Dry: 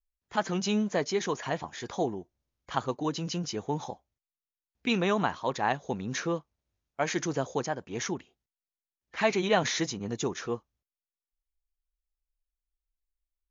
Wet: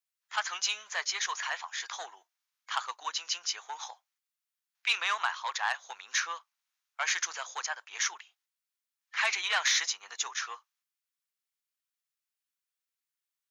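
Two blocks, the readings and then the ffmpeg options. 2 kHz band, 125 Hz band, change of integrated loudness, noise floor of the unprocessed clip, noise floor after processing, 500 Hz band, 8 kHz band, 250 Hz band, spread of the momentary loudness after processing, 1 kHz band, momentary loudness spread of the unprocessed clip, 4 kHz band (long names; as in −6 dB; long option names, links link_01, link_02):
+4.0 dB, below −40 dB, −1.0 dB, below −85 dBFS, below −85 dBFS, −19.0 dB, can't be measured, below −40 dB, 13 LU, −3.0 dB, 9 LU, +5.0 dB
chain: -af "aeval=exprs='0.282*(cos(1*acos(clip(val(0)/0.282,-1,1)))-cos(1*PI/2))+0.0355*(cos(5*acos(clip(val(0)/0.282,-1,1)))-cos(5*PI/2))':channel_layout=same,highpass=frequency=1100:width=0.5412,highpass=frequency=1100:width=1.3066,volume=1.5dB"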